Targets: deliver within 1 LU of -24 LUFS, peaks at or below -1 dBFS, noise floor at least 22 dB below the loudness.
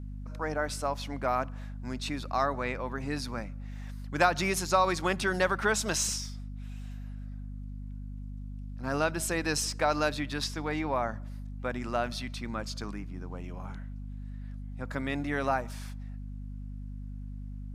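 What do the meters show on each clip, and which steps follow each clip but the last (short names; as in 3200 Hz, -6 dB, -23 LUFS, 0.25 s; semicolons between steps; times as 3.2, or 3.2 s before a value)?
hum 50 Hz; harmonics up to 250 Hz; hum level -37 dBFS; loudness -31.5 LUFS; peak -9.5 dBFS; loudness target -24.0 LUFS
-> de-hum 50 Hz, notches 5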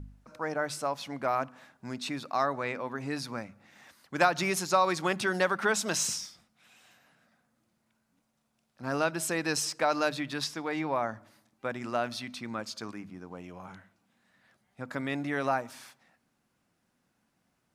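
hum none; loudness -31.0 LUFS; peak -9.0 dBFS; loudness target -24.0 LUFS
-> gain +7 dB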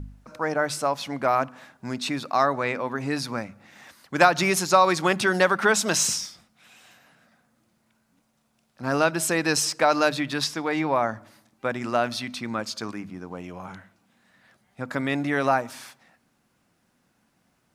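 loudness -24.0 LUFS; peak -2.0 dBFS; noise floor -69 dBFS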